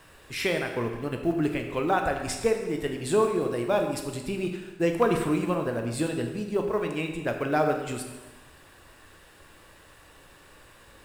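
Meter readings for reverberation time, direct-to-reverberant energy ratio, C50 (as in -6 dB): 1.2 s, 3.5 dB, 6.0 dB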